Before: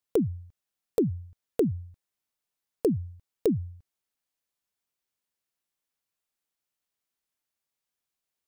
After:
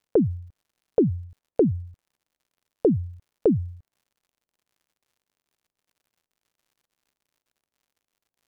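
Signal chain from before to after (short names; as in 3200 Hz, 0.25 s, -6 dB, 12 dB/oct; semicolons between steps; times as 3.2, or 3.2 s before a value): low-pass opened by the level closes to 650 Hz, open at -22.5 dBFS; crackle 120/s -62 dBFS; gain +5 dB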